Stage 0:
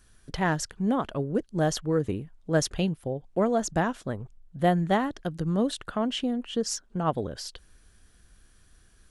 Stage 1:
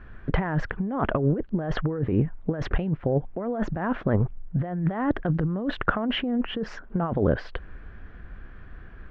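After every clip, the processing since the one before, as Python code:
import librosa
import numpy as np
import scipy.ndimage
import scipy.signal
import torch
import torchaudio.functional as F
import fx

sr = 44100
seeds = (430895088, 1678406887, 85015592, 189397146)

y = scipy.signal.sosfilt(scipy.signal.butter(4, 2100.0, 'lowpass', fs=sr, output='sos'), x)
y = fx.over_compress(y, sr, threshold_db=-34.0, ratio=-1.0)
y = F.gain(torch.from_numpy(y), 9.0).numpy()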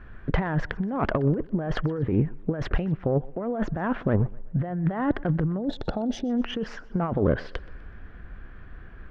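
y = fx.self_delay(x, sr, depth_ms=0.11)
y = fx.spec_box(y, sr, start_s=5.58, length_s=0.72, low_hz=920.0, high_hz=3300.0, gain_db=-17)
y = fx.echo_thinned(y, sr, ms=125, feedback_pct=46, hz=180.0, wet_db=-22.0)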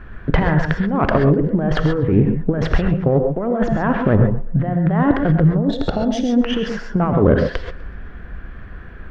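y = fx.rev_gated(x, sr, seeds[0], gate_ms=160, shape='rising', drr_db=4.5)
y = F.gain(torch.from_numpy(y), 8.0).numpy()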